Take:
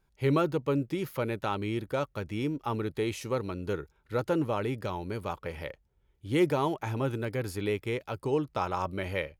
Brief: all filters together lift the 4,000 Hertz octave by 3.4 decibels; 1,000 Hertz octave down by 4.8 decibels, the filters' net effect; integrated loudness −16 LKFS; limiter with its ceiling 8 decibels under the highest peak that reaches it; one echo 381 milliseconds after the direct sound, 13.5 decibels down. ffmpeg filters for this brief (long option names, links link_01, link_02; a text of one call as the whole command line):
ffmpeg -i in.wav -af "equalizer=frequency=1000:width_type=o:gain=-6.5,equalizer=frequency=4000:width_type=o:gain=5,alimiter=limit=-24dB:level=0:latency=1,aecho=1:1:381:0.211,volume=18.5dB" out.wav